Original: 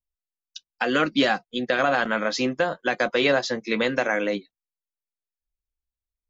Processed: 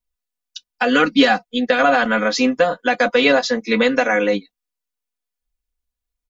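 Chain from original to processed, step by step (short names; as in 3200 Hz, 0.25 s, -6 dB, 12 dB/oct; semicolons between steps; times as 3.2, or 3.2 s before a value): comb 4.1 ms, depth 89%; gain +3.5 dB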